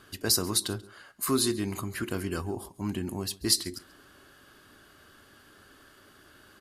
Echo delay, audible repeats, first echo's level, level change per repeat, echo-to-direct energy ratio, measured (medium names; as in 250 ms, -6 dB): 137 ms, 1, -22.5 dB, no regular repeats, -22.5 dB